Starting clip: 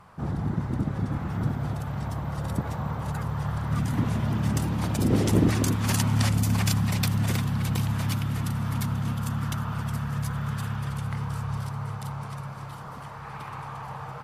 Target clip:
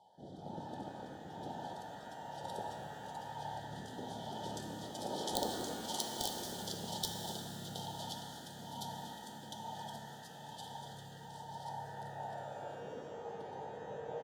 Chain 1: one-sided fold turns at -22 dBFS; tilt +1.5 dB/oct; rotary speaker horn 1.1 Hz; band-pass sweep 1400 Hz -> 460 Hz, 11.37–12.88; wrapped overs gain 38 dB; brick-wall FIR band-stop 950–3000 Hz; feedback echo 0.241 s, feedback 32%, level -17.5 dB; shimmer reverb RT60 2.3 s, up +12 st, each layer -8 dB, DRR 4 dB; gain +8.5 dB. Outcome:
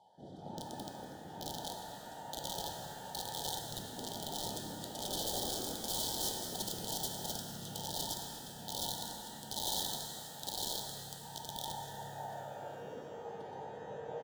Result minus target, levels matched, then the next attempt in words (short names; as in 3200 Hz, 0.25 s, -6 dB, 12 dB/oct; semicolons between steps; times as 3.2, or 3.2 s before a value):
wrapped overs: distortion +15 dB
one-sided fold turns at -22 dBFS; tilt +1.5 dB/oct; rotary speaker horn 1.1 Hz; band-pass sweep 1400 Hz -> 460 Hz, 11.37–12.88; wrapped overs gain 29 dB; brick-wall FIR band-stop 950–3000 Hz; feedback echo 0.241 s, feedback 32%, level -17.5 dB; shimmer reverb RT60 2.3 s, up +12 st, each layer -8 dB, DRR 4 dB; gain +8.5 dB